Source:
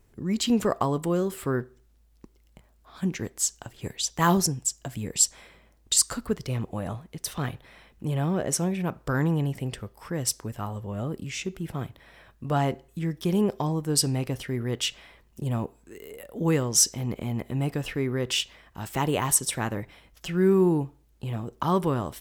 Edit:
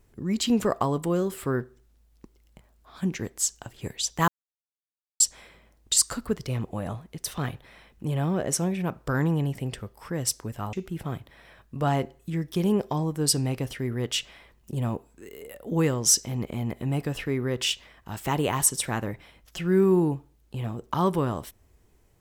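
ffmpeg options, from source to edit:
-filter_complex "[0:a]asplit=4[a][b][c][d];[a]atrim=end=4.28,asetpts=PTS-STARTPTS,afade=t=out:st=4.276:d=0.004:c=hsin[e];[b]atrim=start=4.28:end=5.2,asetpts=PTS-STARTPTS,volume=0[f];[c]atrim=start=5.2:end=10.732,asetpts=PTS-STARTPTS,afade=t=in:d=0.004:c=hsin[g];[d]atrim=start=11.418[h];[e][f][g]concat=n=3:v=0:a=1[i];[i][h]acrossfade=d=0.004:c1=hsin:c2=hsin"

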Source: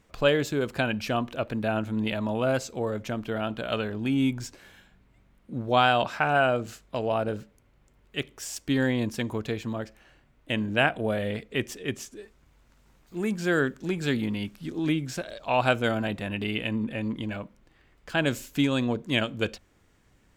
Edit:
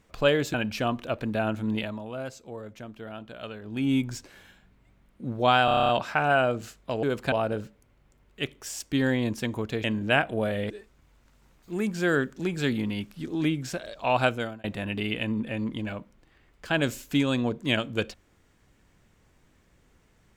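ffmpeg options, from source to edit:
-filter_complex "[0:a]asplit=17[a][b][c][d][e][f][g][h][i][j][k][l][m][n][o][p][q];[a]atrim=end=0.542[r];[b]atrim=start=0.828:end=2.3,asetpts=PTS-STARTPTS,afade=t=out:st=1.202:d=0.27:silence=0.316228[s];[c]atrim=start=2.3:end=3.91,asetpts=PTS-STARTPTS,volume=-10dB[t];[d]atrim=start=3.91:end=5.972,asetpts=PTS-STARTPTS,afade=t=in:d=0.27:silence=0.316228[u];[e]atrim=start=5.938:end=5.972[v];[f]atrim=start=5.938:end=5.972[w];[g]atrim=start=5.938:end=5.972[x];[h]atrim=start=5.938:end=5.972[y];[i]atrim=start=5.938:end=5.972[z];[j]atrim=start=5.938:end=5.972[aa];[k]atrim=start=5.938:end=5.972[ab];[l]atrim=start=5.938:end=7.082[ac];[m]atrim=start=0.538:end=0.832[ad];[n]atrim=start=7.078:end=9.602[ae];[o]atrim=start=10.508:end=11.372[af];[p]atrim=start=12.138:end=16.08,asetpts=PTS-STARTPTS,afade=t=out:st=3.532:d=0.41[ag];[q]atrim=start=16.08,asetpts=PTS-STARTPTS,afade=t=in:d=0.004:c=hsin[ah];[s][t][u]concat=n=3:v=0:a=1[ai];[r][ai]acrossfade=d=0.004:c1=hsin:c2=hsin[aj];[aj][v]acrossfade=d=0.004:c1=hsin:c2=hsin[ak];[ak][w]acrossfade=d=0.004:c1=hsin:c2=hsin[al];[al][x]acrossfade=d=0.004:c1=hsin:c2=hsin[am];[am][y]acrossfade=d=0.004:c1=hsin:c2=hsin[an];[an][z]acrossfade=d=0.004:c1=hsin:c2=hsin[ao];[ao][aa]acrossfade=d=0.004:c1=hsin:c2=hsin[ap];[ap][ab]acrossfade=d=0.004:c1=hsin:c2=hsin[aq];[aq][ac]acrossfade=d=0.004:c1=hsin:c2=hsin[ar];[ar][ad]acrossfade=d=0.004:c1=hsin:c2=hsin[as];[as][ae]acrossfade=d=0.004:c1=hsin:c2=hsin[at];[at][af]acrossfade=d=0.004:c1=hsin:c2=hsin[au];[ag][ah]concat=n=2:v=0:a=1[av];[au][av]acrossfade=d=0.004:c1=hsin:c2=hsin"

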